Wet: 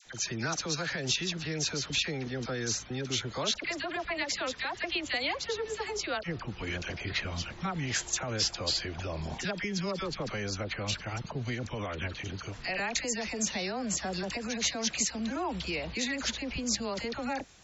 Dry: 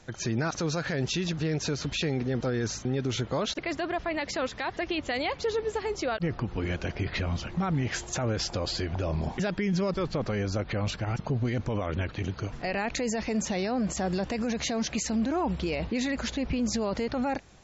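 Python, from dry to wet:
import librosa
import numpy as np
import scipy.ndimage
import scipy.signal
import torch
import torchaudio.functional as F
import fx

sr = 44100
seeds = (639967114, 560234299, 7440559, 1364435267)

y = fx.tilt_shelf(x, sr, db=-6.0, hz=1300.0)
y = fx.dispersion(y, sr, late='lows', ms=57.0, hz=1100.0)
y = y * 10.0 ** (-1.5 / 20.0)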